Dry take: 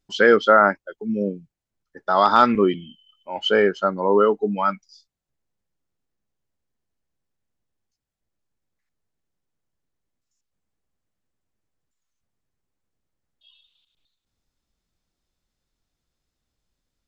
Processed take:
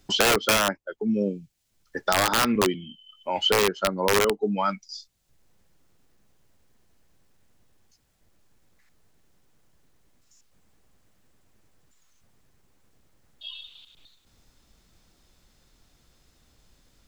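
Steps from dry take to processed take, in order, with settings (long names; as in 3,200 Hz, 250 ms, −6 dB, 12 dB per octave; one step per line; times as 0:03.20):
dynamic equaliser 1,400 Hz, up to −4 dB, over −29 dBFS, Q 1.3
wrap-around overflow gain 9.5 dB
multiband upward and downward compressor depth 70%
level −3 dB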